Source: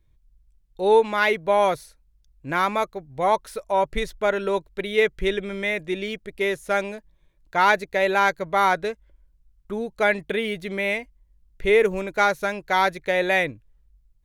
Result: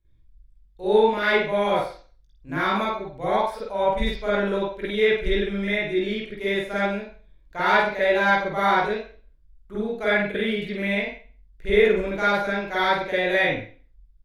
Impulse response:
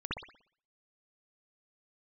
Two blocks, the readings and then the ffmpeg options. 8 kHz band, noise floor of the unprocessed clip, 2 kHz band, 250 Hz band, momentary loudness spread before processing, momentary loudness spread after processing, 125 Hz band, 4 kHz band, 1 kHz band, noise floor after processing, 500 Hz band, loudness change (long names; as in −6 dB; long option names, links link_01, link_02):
can't be measured, −62 dBFS, +0.5 dB, +3.5 dB, 10 LU, 10 LU, +3.5 dB, +1.5 dB, −1.5 dB, −57 dBFS, 0.0 dB, 0.0 dB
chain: -filter_complex "[0:a]aecho=1:1:19|49:0.473|0.596[link_01];[1:a]atrim=start_sample=2205,asetrate=57330,aresample=44100[link_02];[link_01][link_02]afir=irnorm=-1:irlink=0,volume=-3.5dB"